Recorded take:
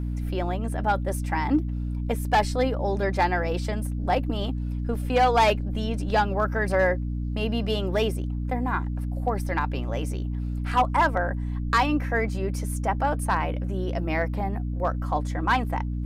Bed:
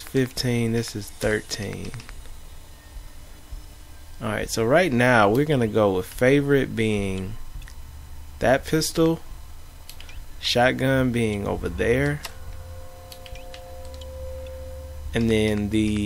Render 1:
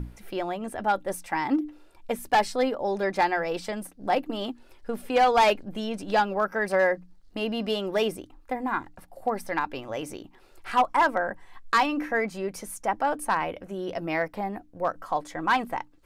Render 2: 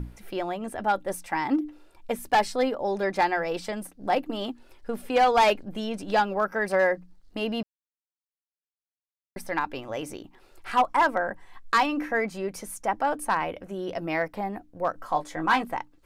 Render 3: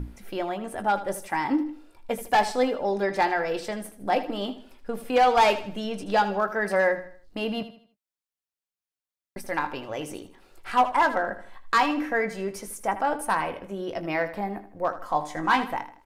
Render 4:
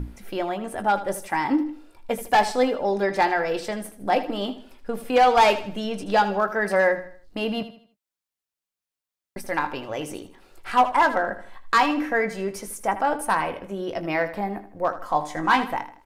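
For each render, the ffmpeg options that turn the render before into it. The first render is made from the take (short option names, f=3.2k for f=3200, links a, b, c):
-af "bandreject=f=60:t=h:w=6,bandreject=f=120:t=h:w=6,bandreject=f=180:t=h:w=6,bandreject=f=240:t=h:w=6,bandreject=f=300:t=h:w=6"
-filter_complex "[0:a]asettb=1/sr,asplit=3[a][b][c];[a]atrim=end=14.964[d];[b]atrim=start=14.96:end=15.63,asetpts=PTS-STARTPTS,afade=t=in:d=0.004:c=qsin,afade=t=out:st=0.666:d=0.004:c=qsin,asplit=2[e][f];[f]adelay=19,volume=-6dB[g];[e][g]amix=inputs=2:normalize=0,atrim=end_sample=29547[h];[c]atrim=start=15.626[i];[d][h]acrossfade=d=0.004:c1=hsin:c2=qsin[j];[j][i]acrossfade=d=0.004:c1=qsin:c2=hsin,asplit=3[k][l][m];[k]atrim=end=7.63,asetpts=PTS-STARTPTS,afade=t=out:st=7.626:d=0.004:c=hsin[n];[l]atrim=start=7.63:end=9.36,asetpts=PTS-STARTPTS,volume=0[o];[m]atrim=start=9.36,asetpts=PTS-STARTPTS,afade=t=in:d=0.004:c=hsin[p];[n][o][p]concat=n=3:v=0:a=1"
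-filter_complex "[0:a]asplit=2[a][b];[b]adelay=20,volume=-11dB[c];[a][c]amix=inputs=2:normalize=0,aecho=1:1:79|158|237|316:0.224|0.0828|0.0306|0.0113"
-af "volume=2.5dB"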